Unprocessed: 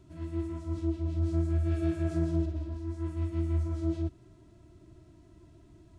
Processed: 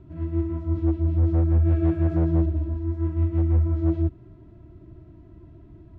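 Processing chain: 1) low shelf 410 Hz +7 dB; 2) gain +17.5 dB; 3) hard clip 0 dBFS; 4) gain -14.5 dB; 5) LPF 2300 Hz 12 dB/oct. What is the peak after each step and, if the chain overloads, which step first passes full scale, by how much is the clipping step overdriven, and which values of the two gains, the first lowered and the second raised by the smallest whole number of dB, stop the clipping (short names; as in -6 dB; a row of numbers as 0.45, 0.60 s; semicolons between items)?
-12.5, +5.0, 0.0, -14.5, -14.5 dBFS; step 2, 5.0 dB; step 2 +12.5 dB, step 4 -9.5 dB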